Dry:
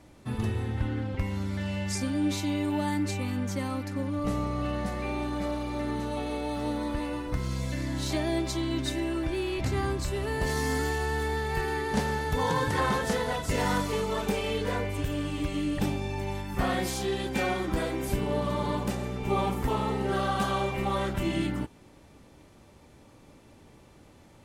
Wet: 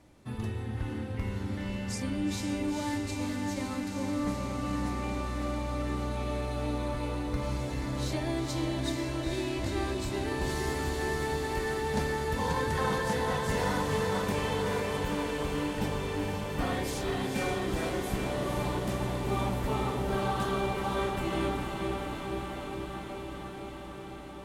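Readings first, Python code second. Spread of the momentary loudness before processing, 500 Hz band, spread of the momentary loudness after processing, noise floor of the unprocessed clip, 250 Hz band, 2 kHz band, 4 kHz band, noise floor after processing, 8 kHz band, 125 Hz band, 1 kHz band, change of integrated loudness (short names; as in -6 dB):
5 LU, -1.0 dB, 6 LU, -55 dBFS, -2.5 dB, -2.0 dB, -2.0 dB, -41 dBFS, -2.0 dB, -2.0 dB, -2.0 dB, -2.5 dB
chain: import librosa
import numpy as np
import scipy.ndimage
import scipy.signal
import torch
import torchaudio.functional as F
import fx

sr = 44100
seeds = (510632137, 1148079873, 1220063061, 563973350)

y = fx.echo_diffused(x, sr, ms=481, feedback_pct=79, wet_db=-4.0)
y = y * 10.0 ** (-5.0 / 20.0)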